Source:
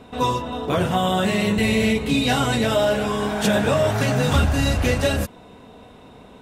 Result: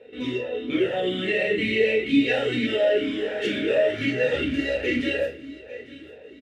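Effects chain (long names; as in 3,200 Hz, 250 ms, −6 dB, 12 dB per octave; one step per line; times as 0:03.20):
dynamic equaliser 2,100 Hz, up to +4 dB, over −37 dBFS, Q 0.76
repeating echo 849 ms, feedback 40%, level −19 dB
convolution reverb RT60 0.45 s, pre-delay 15 ms, DRR 1.5 dB
soft clipping −5 dBFS, distortion −22 dB
formant filter swept between two vowels e-i 2.1 Hz
level +4.5 dB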